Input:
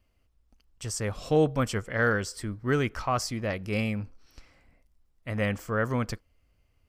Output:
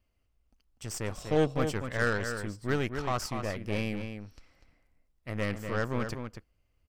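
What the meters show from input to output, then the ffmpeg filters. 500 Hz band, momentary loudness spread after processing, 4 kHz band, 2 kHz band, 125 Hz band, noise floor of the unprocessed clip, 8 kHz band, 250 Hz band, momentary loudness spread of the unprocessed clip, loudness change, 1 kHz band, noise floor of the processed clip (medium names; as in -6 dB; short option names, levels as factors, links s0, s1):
-3.0 dB, 13 LU, -2.5 dB, -3.0 dB, -3.5 dB, -69 dBFS, -4.5 dB, -3.5 dB, 11 LU, -3.5 dB, -3.5 dB, -74 dBFS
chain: -filter_complex "[0:a]aeval=exprs='0.237*(cos(1*acos(clip(val(0)/0.237,-1,1)))-cos(1*PI/2))+0.0266*(cos(3*acos(clip(val(0)/0.237,-1,1)))-cos(3*PI/2))+0.015*(cos(8*acos(clip(val(0)/0.237,-1,1)))-cos(8*PI/2))':c=same,asplit=2[s0][s1];[s1]adelay=244.9,volume=0.447,highshelf=f=4000:g=-5.51[s2];[s0][s2]amix=inputs=2:normalize=0,volume=0.794"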